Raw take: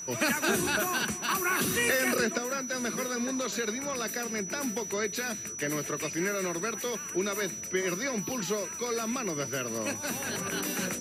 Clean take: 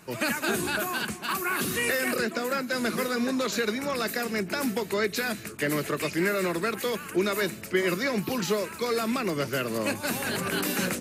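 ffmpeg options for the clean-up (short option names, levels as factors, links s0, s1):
-af "bandreject=f=5900:w=30,asetnsamples=n=441:p=0,asendcmd='2.38 volume volume 5dB',volume=1"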